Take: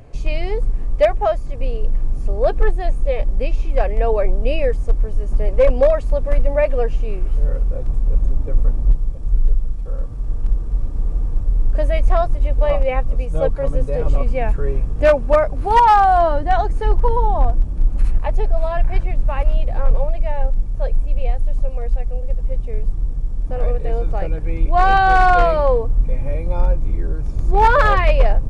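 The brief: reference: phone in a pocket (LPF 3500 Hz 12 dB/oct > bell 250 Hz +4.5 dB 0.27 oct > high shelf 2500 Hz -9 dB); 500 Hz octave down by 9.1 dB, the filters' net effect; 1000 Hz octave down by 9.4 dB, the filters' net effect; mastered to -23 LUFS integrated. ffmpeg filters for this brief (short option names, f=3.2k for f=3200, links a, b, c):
-af "lowpass=3.5k,equalizer=f=250:t=o:w=0.27:g=4.5,equalizer=f=500:t=o:g=-8,equalizer=f=1k:t=o:g=-8,highshelf=f=2.5k:g=-9"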